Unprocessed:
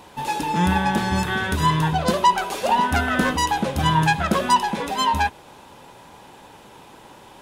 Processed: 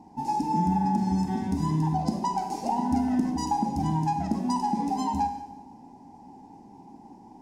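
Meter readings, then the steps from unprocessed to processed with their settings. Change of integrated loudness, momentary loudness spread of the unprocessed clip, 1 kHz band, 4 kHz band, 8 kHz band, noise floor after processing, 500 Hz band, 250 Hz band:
-6.5 dB, 5 LU, -7.0 dB, -18.0 dB, -11.5 dB, -50 dBFS, -12.5 dB, -1.0 dB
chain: FFT filter 120 Hz 0 dB, 270 Hz +13 dB, 550 Hz -13 dB, 810 Hz +9 dB, 1.3 kHz -23 dB, 2 kHz -11 dB, 3.5 kHz -19 dB, 5.1 kHz +1 dB, 12 kHz -10 dB; compression, threshold -16 dBFS, peak gain reduction 10 dB; Schroeder reverb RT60 1 s, combs from 32 ms, DRR 5.5 dB; tape noise reduction on one side only decoder only; trim -7 dB

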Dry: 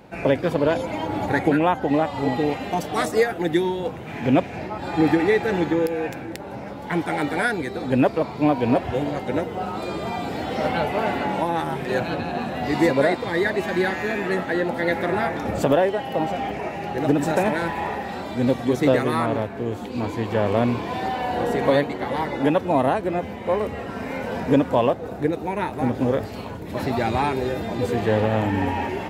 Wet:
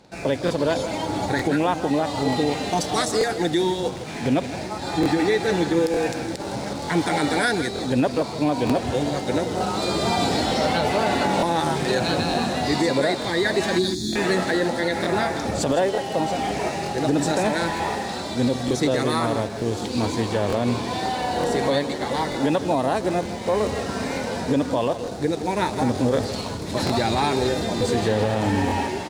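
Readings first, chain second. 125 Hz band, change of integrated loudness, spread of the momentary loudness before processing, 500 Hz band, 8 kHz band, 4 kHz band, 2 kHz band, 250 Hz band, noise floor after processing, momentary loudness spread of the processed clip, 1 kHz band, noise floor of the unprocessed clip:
0.0 dB, 0.0 dB, 9 LU, -0.5 dB, +10.5 dB, +8.0 dB, 0.0 dB, 0.0 dB, -31 dBFS, 5 LU, +0.5 dB, -34 dBFS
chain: in parallel at -9 dB: bit crusher 6-bit; on the sum: time-frequency box 13.79–14.13 s, 390–3300 Hz -30 dB; level rider gain up to 11.5 dB; high-order bell 6.1 kHz +12 dB; peak limiter -6 dBFS, peak gain reduction 11.5 dB; treble shelf 7.8 kHz -7 dB; delay 161 ms -12.5 dB; crackling interface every 0.91 s, samples 1024, repeat, from 0.46 s; trim -5.5 dB

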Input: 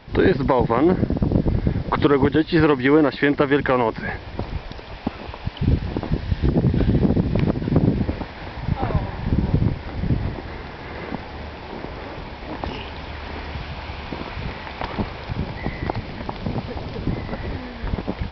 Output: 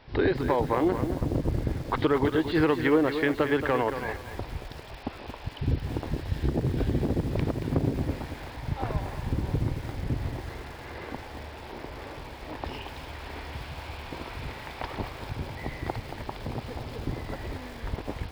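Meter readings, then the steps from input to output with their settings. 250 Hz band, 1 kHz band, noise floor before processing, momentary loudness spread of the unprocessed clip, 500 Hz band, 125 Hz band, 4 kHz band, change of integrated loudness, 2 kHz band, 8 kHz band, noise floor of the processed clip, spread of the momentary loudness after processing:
-8.0 dB, -6.5 dB, -36 dBFS, 15 LU, -6.5 dB, -8.0 dB, -6.5 dB, -7.5 dB, -6.5 dB, no reading, -42 dBFS, 15 LU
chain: peaking EQ 190 Hz -12 dB 0.3 oct; bit-crushed delay 227 ms, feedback 35%, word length 6-bit, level -8.5 dB; trim -7 dB

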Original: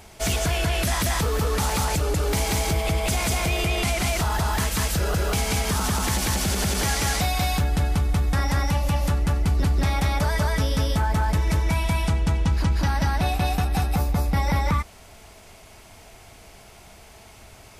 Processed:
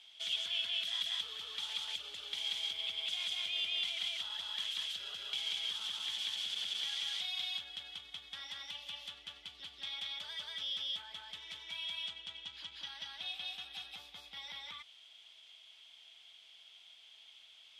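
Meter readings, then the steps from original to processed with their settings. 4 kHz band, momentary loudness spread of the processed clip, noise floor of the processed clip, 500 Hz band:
-3.0 dB, 21 LU, -59 dBFS, -33.0 dB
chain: peak limiter -18 dBFS, peak gain reduction 5 dB; band-pass filter 3.3 kHz, Q 13; trim +7 dB

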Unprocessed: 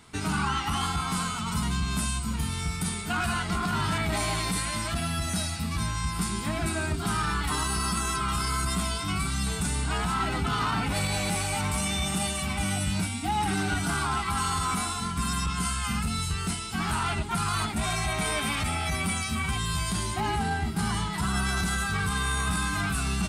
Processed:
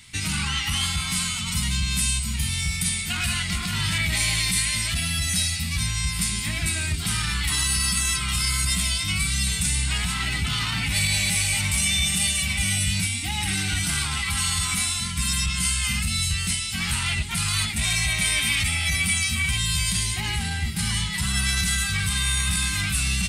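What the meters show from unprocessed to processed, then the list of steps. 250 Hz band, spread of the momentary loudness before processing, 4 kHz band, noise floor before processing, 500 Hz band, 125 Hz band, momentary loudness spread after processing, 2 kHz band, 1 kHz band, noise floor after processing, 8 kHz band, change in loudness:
-2.0 dB, 2 LU, +9.0 dB, -33 dBFS, -10.5 dB, +3.0 dB, 4 LU, +5.5 dB, -7.5 dB, -29 dBFS, +9.0 dB, +5.5 dB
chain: FFT filter 120 Hz 0 dB, 440 Hz -16 dB, 1.4 kHz -10 dB, 2 kHz +5 dB; trim +4 dB

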